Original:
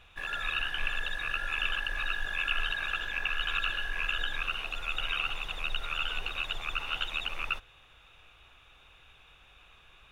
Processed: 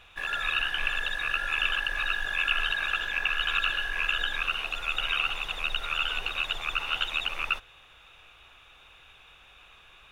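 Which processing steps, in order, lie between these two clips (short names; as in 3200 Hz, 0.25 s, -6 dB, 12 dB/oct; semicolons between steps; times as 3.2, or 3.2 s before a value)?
low shelf 290 Hz -6 dB; gain +4.5 dB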